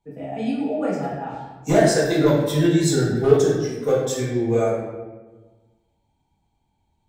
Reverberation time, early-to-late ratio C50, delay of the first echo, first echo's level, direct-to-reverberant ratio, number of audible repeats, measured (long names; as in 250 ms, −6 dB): 1.3 s, 1.0 dB, no echo audible, no echo audible, −7.5 dB, no echo audible